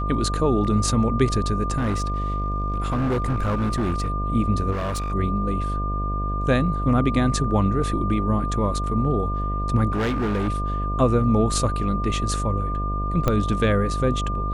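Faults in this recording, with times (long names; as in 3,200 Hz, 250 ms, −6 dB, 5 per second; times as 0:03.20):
mains buzz 50 Hz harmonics 14 −26 dBFS
whistle 1,200 Hz −28 dBFS
0:01.77–0:04.10: clipping −19 dBFS
0:04.71–0:05.13: clipping −23 dBFS
0:09.92–0:10.49: clipping −20 dBFS
0:13.28: click −8 dBFS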